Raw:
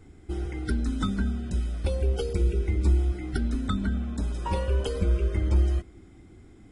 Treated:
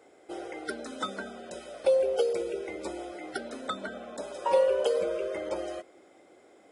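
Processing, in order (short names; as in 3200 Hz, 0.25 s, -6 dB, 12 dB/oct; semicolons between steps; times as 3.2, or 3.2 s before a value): resonant high-pass 560 Hz, resonance Q 4.9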